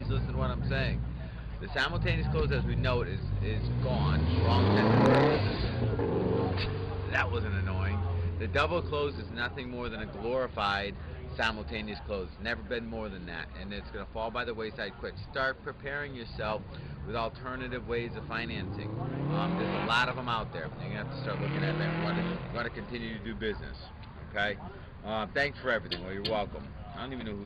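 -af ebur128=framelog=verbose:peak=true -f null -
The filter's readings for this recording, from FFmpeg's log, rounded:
Integrated loudness:
  I:         -32.0 LUFS
  Threshold: -42.1 LUFS
Loudness range:
  LRA:         8.9 LU
  Threshold: -52.0 LUFS
  LRA low:   -36.2 LUFS
  LRA high:  -27.3 LUFS
True peak:
  Peak:      -16.2 dBFS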